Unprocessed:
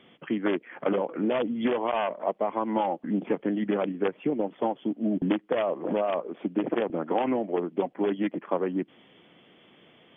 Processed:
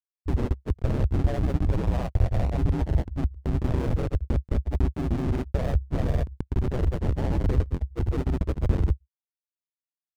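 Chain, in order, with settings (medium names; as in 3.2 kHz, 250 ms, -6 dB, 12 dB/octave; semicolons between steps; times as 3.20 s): Schmitt trigger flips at -26.5 dBFS; tilt EQ -3 dB/octave; granulator 100 ms, grains 20 per s, spray 135 ms; gate with hold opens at -44 dBFS; ring modulator 66 Hz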